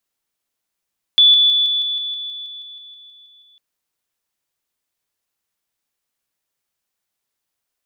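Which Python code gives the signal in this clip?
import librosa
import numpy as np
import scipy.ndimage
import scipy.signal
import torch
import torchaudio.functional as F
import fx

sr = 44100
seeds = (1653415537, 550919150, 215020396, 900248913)

y = fx.level_ladder(sr, hz=3460.0, from_db=-7.0, step_db=-3.0, steps=15, dwell_s=0.16, gap_s=0.0)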